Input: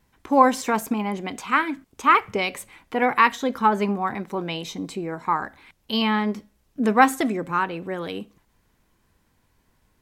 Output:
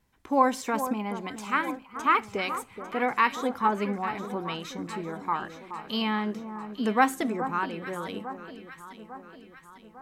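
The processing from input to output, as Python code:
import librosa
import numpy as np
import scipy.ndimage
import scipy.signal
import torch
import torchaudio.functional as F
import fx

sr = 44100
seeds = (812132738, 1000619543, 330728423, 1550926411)

y = fx.echo_alternate(x, sr, ms=425, hz=1400.0, feedback_pct=72, wet_db=-10.0)
y = y * librosa.db_to_amplitude(-6.0)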